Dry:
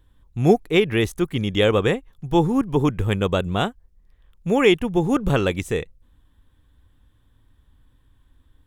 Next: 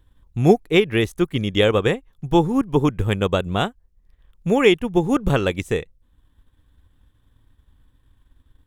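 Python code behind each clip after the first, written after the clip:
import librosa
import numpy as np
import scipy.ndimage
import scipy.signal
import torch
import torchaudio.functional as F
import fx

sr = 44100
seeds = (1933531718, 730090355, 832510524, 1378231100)

y = fx.transient(x, sr, attack_db=3, sustain_db=-4)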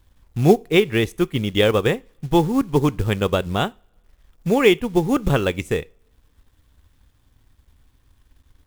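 y = fx.quant_companded(x, sr, bits=6)
y = fx.rev_double_slope(y, sr, seeds[0], early_s=0.33, late_s=1.8, knee_db=-27, drr_db=19.5)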